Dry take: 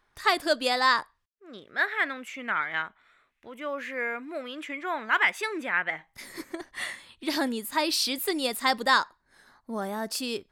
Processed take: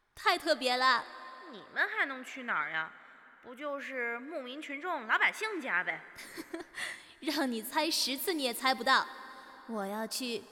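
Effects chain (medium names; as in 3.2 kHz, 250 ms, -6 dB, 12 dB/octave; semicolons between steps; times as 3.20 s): plate-style reverb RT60 4.9 s, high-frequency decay 0.65×, DRR 17.5 dB; trim -4.5 dB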